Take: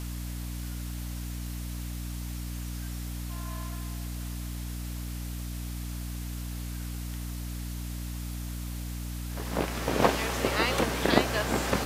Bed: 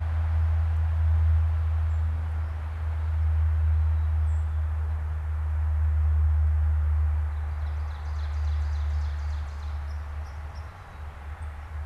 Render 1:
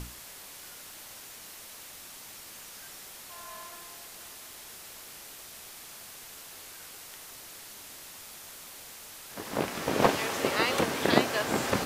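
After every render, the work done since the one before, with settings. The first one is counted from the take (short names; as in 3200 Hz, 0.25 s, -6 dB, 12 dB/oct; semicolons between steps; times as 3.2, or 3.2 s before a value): notches 60/120/180/240/300 Hz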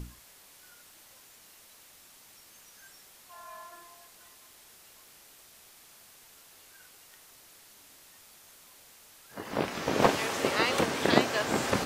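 noise print and reduce 9 dB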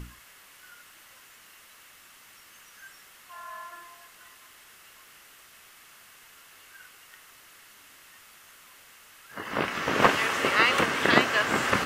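band shelf 1800 Hz +8.5 dB; notch 2400 Hz, Q 17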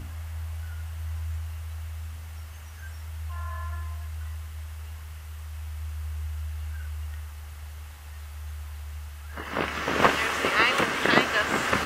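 add bed -10.5 dB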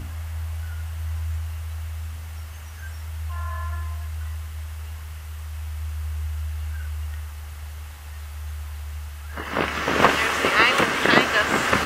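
gain +4.5 dB; limiter -1 dBFS, peak gain reduction 3 dB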